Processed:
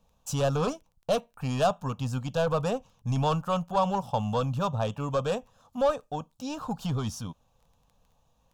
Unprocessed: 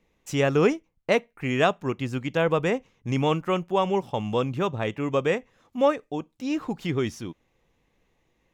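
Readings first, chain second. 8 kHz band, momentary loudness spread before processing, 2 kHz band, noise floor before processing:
can't be measured, 8 LU, −10.5 dB, −71 dBFS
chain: soft clipping −19.5 dBFS, distortion −11 dB
phaser with its sweep stopped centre 850 Hz, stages 4
surface crackle 11 per second −52 dBFS
level +4.5 dB

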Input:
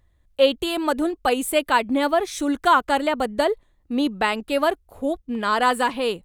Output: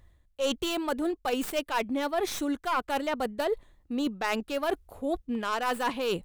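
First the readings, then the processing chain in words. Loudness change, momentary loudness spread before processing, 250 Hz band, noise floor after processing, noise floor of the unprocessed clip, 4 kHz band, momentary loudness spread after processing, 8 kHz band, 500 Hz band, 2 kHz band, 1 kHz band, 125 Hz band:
−8.5 dB, 8 LU, −7.0 dB, −66 dBFS, −63 dBFS, −7.5 dB, 3 LU, −6.0 dB, −8.0 dB, −9.0 dB, −9.5 dB, can't be measured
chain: stylus tracing distortion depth 0.11 ms
reversed playback
downward compressor 6 to 1, threshold −31 dBFS, peak gain reduction 18 dB
reversed playback
level +4 dB

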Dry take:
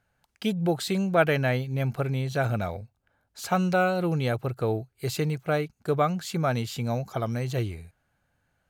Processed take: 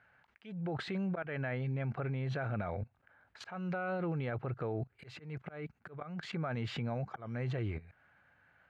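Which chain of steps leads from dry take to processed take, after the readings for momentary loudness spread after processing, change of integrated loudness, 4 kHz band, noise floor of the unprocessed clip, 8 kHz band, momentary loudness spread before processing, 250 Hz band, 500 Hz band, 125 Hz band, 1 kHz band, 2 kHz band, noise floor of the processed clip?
11 LU, −11.0 dB, −12.5 dB, −74 dBFS, below −20 dB, 8 LU, −10.5 dB, −13.0 dB, −9.0 dB, −14.0 dB, −11.0 dB, −74 dBFS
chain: output level in coarse steps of 20 dB
low-pass with resonance 1,900 Hz, resonance Q 1.5
volume swells 309 ms
brickwall limiter −35 dBFS, peak gain reduction 11.5 dB
high-pass filter 68 Hz
one half of a high-frequency compander encoder only
level +6.5 dB

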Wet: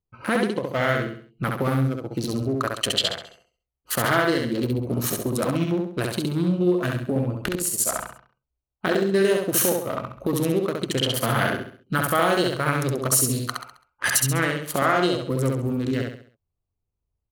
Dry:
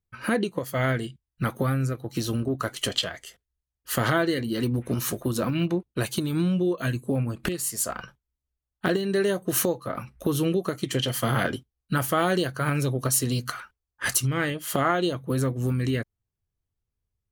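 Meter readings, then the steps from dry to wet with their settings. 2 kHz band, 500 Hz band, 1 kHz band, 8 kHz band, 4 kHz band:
+4.0 dB, +3.5 dB, +4.0 dB, +4.5 dB, +4.0 dB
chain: adaptive Wiener filter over 25 samples
low-shelf EQ 440 Hz −8 dB
in parallel at +0.5 dB: brickwall limiter −18.5 dBFS, peak gain reduction 9.5 dB
on the sum: repeating echo 67 ms, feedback 39%, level −3 dB

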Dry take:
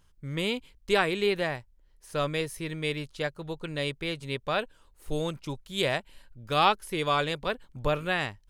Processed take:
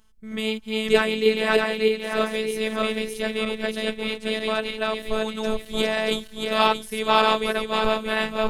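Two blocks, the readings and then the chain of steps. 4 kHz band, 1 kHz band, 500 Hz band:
+6.5 dB, +5.0 dB, +7.5 dB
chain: feedback delay that plays each chunk backwards 314 ms, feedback 62%, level 0 dB
phases set to zero 218 Hz
level +4.5 dB

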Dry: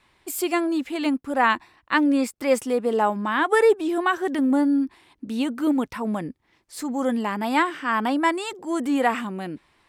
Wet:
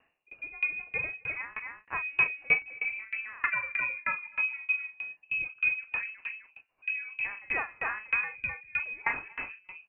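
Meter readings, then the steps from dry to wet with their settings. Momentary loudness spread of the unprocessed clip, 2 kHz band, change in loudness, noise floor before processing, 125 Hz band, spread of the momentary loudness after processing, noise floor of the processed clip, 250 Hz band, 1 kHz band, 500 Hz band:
11 LU, −0.5 dB, −7.5 dB, −67 dBFS, below −10 dB, 12 LU, −71 dBFS, below −35 dB, −16.0 dB, −26.5 dB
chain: hum removal 180.5 Hz, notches 9
rotating-speaker cabinet horn 0.75 Hz
in parallel at −5 dB: hard clipping −19 dBFS, distortion −12 dB
on the sum: double-tracking delay 41 ms −6.5 dB
on a send: single-tap delay 257 ms −7 dB
on the sum: voice inversion scrambler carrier 2,800 Hz
tremolo with a ramp in dB decaying 3.2 Hz, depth 27 dB
level −5 dB

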